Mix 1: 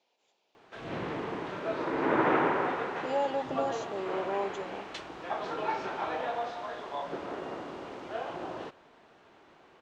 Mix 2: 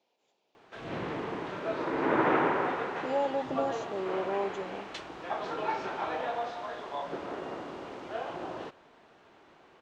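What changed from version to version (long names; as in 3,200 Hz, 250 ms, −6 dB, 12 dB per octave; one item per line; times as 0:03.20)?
speech: add tilt shelving filter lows +3.5 dB, about 660 Hz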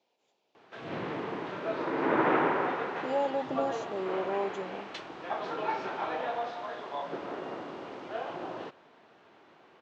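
background: add band-pass filter 110–6,000 Hz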